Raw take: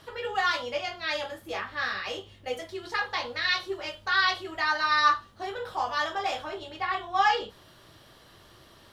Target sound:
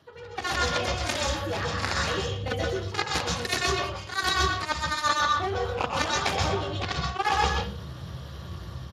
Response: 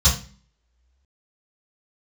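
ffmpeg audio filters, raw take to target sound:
-filter_complex "[0:a]aeval=exprs='0.355*(cos(1*acos(clip(val(0)/0.355,-1,1)))-cos(1*PI/2))+0.0631*(cos(7*acos(clip(val(0)/0.355,-1,1)))-cos(7*PI/2))':c=same,asplit=2[s0][s1];[s1]adelay=120,highpass=300,lowpass=3400,asoftclip=type=hard:threshold=0.112,volume=0.355[s2];[s0][s2]amix=inputs=2:normalize=0,areverse,acompressor=threshold=0.00891:ratio=10,areverse,tremolo=f=11:d=0.32,tiltshelf=f=700:g=3,dynaudnorm=f=140:g=5:m=4.47,asplit=2[s3][s4];[1:a]atrim=start_sample=2205,atrim=end_sample=6615,adelay=121[s5];[s4][s5]afir=irnorm=-1:irlink=0,volume=0.133[s6];[s3][s6]amix=inputs=2:normalize=0,volume=2.37" -ar 32000 -c:a libspeex -b:a 36k

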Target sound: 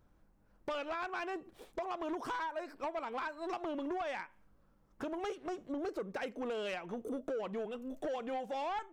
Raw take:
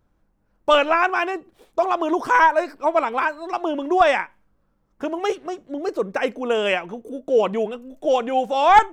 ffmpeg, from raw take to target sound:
-af "acompressor=threshold=0.0316:ratio=16,asoftclip=type=tanh:threshold=0.0316,volume=0.794"

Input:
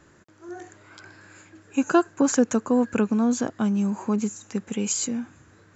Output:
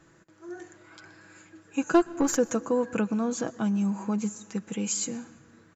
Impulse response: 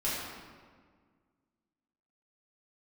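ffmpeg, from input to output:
-filter_complex "[0:a]aecho=1:1:6.1:0.47,asettb=1/sr,asplit=3[s0][s1][s2];[s0]atrim=end=1.944[s3];[s1]atrim=start=1.94:end=2.37,asetpts=PTS-STARTPTS,afade=t=in:d=0.004:c=qsin,afade=t=out:st=0.426:d=0.004:c=qsin,aeval=exprs='0.501*(cos(1*acos(clip(val(0)/0.501,-1,1)))-cos(1*PI/2))+0.02*(cos(8*acos(clip(val(0)/0.501,-1,1)))-cos(8*PI/2))':c=same[s4];[s2]atrim=start=2.366[s5];[s3][s4]acrossfade=d=0.004:c1=hsin:c2=qsin[s6];[s6][s5]acrossfade=d=0.004:c1=qsin:c2=hsin,asplit=2[s7][s8];[1:a]atrim=start_sample=2205,asetrate=52920,aresample=44100,adelay=118[s9];[s8][s9]afir=irnorm=-1:irlink=0,volume=0.0501[s10];[s7][s10]amix=inputs=2:normalize=0,volume=0.631"

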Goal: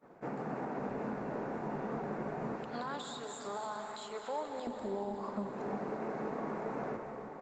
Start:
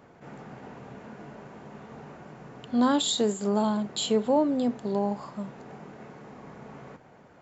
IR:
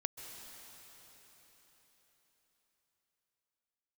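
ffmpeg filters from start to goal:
-filter_complex "[0:a]agate=range=0.0224:threshold=0.00562:ratio=3:detection=peak,acontrast=70,asetnsamples=n=441:p=0,asendcmd='2.56 highpass f 1300;4.67 highpass f 270',highpass=210,equalizer=f=3100:t=o:w=0.24:g=-8.5,acompressor=threshold=0.0112:ratio=4,alimiter=level_in=2.66:limit=0.0631:level=0:latency=1:release=139,volume=0.376,highshelf=f=2100:g=-10,asplit=2[s0][s1];[s1]adelay=165,lowpass=f=2800:p=1,volume=0.168,asplit=2[s2][s3];[s3]adelay=165,lowpass=f=2800:p=1,volume=0.32,asplit=2[s4][s5];[s5]adelay=165,lowpass=f=2800:p=1,volume=0.32[s6];[s0][s2][s4][s6]amix=inputs=4:normalize=0[s7];[1:a]atrim=start_sample=2205[s8];[s7][s8]afir=irnorm=-1:irlink=0,volume=2.11" -ar 48000 -c:a libopus -b:a 20k

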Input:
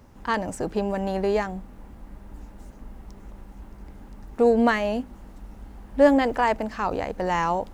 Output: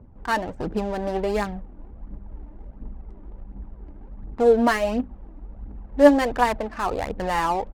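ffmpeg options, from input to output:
-af "aresample=32000,aresample=44100,adynamicsmooth=sensitivity=7.5:basefreq=530,aphaser=in_gain=1:out_gain=1:delay=3.5:decay=0.47:speed=1.4:type=triangular"

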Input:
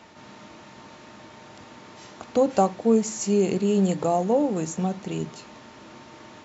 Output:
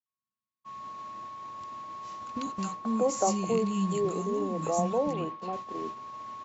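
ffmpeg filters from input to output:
-filter_complex "[0:a]aeval=exprs='val(0)+0.0251*sin(2*PI*1100*n/s)':c=same,asplit=2[s0][s1];[s1]acompressor=threshold=0.0355:ratio=6,volume=0.891[s2];[s0][s2]amix=inputs=2:normalize=0,asettb=1/sr,asplit=3[s3][s4][s5];[s3]atrim=end=5.074[s6];[s4]atrim=start=5.07:end=5.47,asetpts=PTS-STARTPTS,afade=t=in:d=0.004:c=qsin,afade=t=out:st=0.396:d=0.004:c=qsin,highpass=130,lowpass=3200[s7];[s5]atrim=start=5.466[s8];[s6][s7]acrossfade=d=0.004:c1=hsin:c2=qsin[s9];[s9][s8]acrossfade=d=0.004:c1=qsin:c2=hsin,acrossover=split=270|1400[s10][s11][s12];[s12]adelay=60[s13];[s11]adelay=640[s14];[s10][s14][s13]amix=inputs=3:normalize=0,agate=range=0.00251:threshold=0.0355:ratio=16:detection=peak,volume=0.447"

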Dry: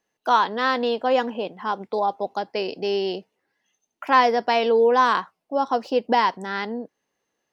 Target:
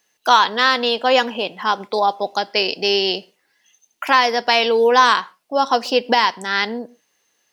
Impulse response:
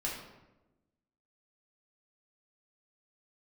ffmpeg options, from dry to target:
-filter_complex "[0:a]tiltshelf=f=1500:g=-7.5,alimiter=limit=0.266:level=0:latency=1:release=432,asplit=2[s0][s1];[1:a]atrim=start_sample=2205,afade=t=out:st=0.2:d=0.01,atrim=end_sample=9261[s2];[s1][s2]afir=irnorm=-1:irlink=0,volume=0.0794[s3];[s0][s3]amix=inputs=2:normalize=0,volume=2.82"

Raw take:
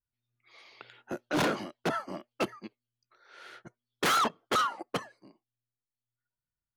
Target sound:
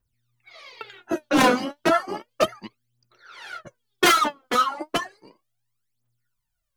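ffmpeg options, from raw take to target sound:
-filter_complex "[0:a]asettb=1/sr,asplit=3[s0][s1][s2];[s0]atrim=end=4.114[s3];[s1]atrim=start=4.11:end=4.85,asetpts=PTS-STARTPTS,afade=t=in:d=0.004:c=qsin,afade=t=out:st=0.736:d=0.004:c=qsin,acompressor=threshold=0.0251:ratio=4[s4];[s2]atrim=start=4.846[s5];[s3][s4]acrossfade=d=0.004:c1=hsin:c2=qsin[s6];[s6][s5]acrossfade=d=0.004:c1=qsin:c2=hsin,aphaser=in_gain=1:out_gain=1:delay=4.1:decay=0.78:speed=0.33:type=triangular,volume=2.11"

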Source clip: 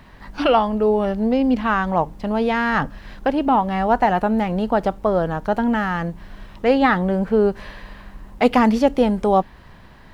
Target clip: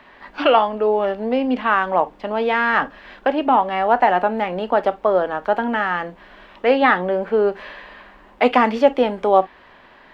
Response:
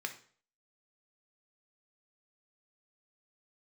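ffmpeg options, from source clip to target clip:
-filter_complex "[0:a]acrossover=split=290 3700:gain=0.158 1 0.2[s0][s1][s2];[s0][s1][s2]amix=inputs=3:normalize=0,asplit=2[s3][s4];[1:a]atrim=start_sample=2205,atrim=end_sample=3969,asetrate=61740,aresample=44100[s5];[s4][s5]afir=irnorm=-1:irlink=0,volume=1.26[s6];[s3][s6]amix=inputs=2:normalize=0,volume=0.841"

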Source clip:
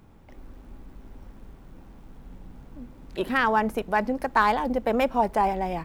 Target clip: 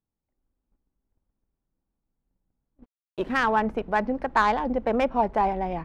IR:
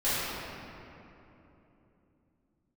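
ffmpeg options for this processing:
-filter_complex "[0:a]agate=range=0.0178:threshold=0.0158:ratio=16:detection=peak,adynamicsmooth=sensitivity=1:basefreq=2700,asettb=1/sr,asplit=3[s0][s1][s2];[s0]atrim=end=2.834[s3];[s1]atrim=start=2.83:end=3.43,asetpts=PTS-STARTPTS,afade=t=in:d=0.004:c=qsin,afade=t=out:st=0.596:d=0.004:c=qsin,aeval=exprs='sgn(val(0))*max(abs(val(0))-0.00237,0)':c=same[s4];[s2]atrim=start=3.426[s5];[s3][s4]acrossfade=d=0.004:c1=hsin:c2=qsin[s6];[s6][s5]acrossfade=d=0.004:c1=qsin:c2=hsin"

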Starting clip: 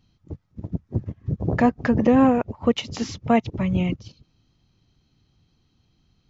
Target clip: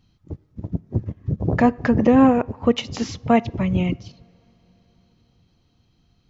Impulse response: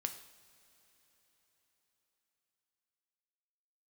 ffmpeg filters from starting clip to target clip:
-filter_complex "[0:a]asplit=2[s0][s1];[1:a]atrim=start_sample=2205,highshelf=f=4100:g=-8.5[s2];[s1][s2]afir=irnorm=-1:irlink=0,volume=0.316[s3];[s0][s3]amix=inputs=2:normalize=0"

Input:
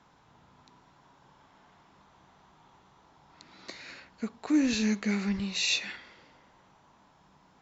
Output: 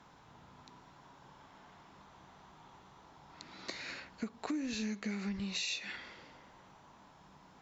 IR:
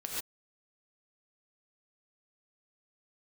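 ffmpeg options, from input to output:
-af "acompressor=threshold=0.0141:ratio=8,volume=1.26"

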